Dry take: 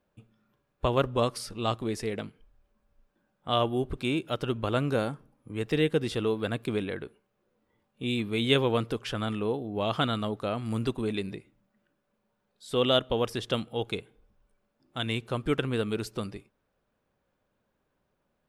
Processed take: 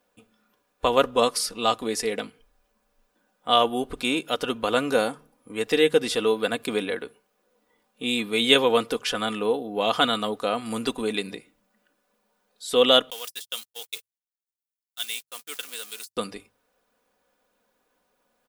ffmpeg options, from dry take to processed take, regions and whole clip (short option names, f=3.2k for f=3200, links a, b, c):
-filter_complex "[0:a]asettb=1/sr,asplit=3[a][b][c];[a]atrim=end=13.104[d];[b]atrim=start=13.1:end=16.17,asetpts=PTS-STARTPTS,afade=t=in:d=0.004:c=qsin,afade=t=out:st=3.066:d=0.004:c=qsin,aeval=exprs='val(0)+0.5*0.0141*sgn(val(0))':c=same,agate=range=-56dB:threshold=-32dB:ratio=16:release=100:detection=peak,aderivative[e];[c]atrim=start=16.166[f];[d][e]acrossfade=d=0.004:c1=hsin:c2=qsin[g];[g][f]acrossfade=d=0.004:c1=qsin:c2=hsin,bass=f=250:g=-13,treble=f=4k:g=6,bandreject=f=50:t=h:w=6,bandreject=f=100:t=h:w=6,bandreject=f=150:t=h:w=6,aecho=1:1:4.1:0.49,volume=6dB"